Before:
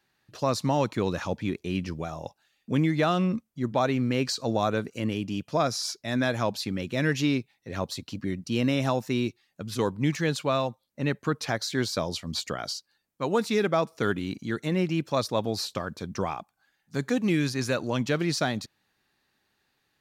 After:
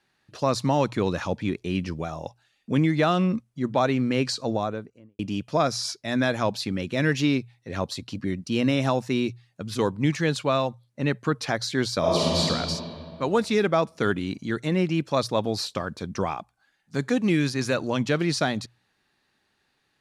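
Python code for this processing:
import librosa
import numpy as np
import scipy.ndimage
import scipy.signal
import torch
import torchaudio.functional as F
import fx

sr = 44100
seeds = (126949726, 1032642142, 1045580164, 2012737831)

y = fx.studio_fade_out(x, sr, start_s=4.26, length_s=0.93)
y = fx.reverb_throw(y, sr, start_s=11.99, length_s=0.4, rt60_s=2.5, drr_db=-8.0)
y = scipy.signal.sosfilt(scipy.signal.butter(4, 11000.0, 'lowpass', fs=sr, output='sos'), y)
y = fx.peak_eq(y, sr, hz=6800.0, db=-2.0, octaves=0.77)
y = fx.hum_notches(y, sr, base_hz=60, count=2)
y = y * librosa.db_to_amplitude(2.5)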